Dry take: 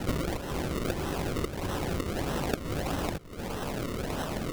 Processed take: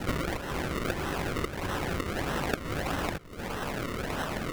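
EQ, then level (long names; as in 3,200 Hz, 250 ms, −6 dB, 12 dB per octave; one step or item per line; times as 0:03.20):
dynamic equaliser 1,700 Hz, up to +7 dB, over −50 dBFS, Q 0.84
−1.5 dB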